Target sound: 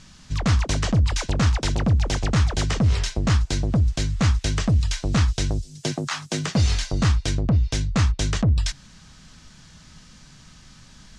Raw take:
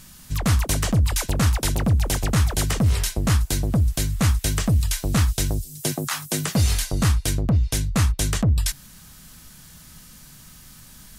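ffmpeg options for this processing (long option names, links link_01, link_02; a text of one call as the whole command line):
ffmpeg -i in.wav -af "lowpass=frequency=6500:width=0.5412,lowpass=frequency=6500:width=1.3066" out.wav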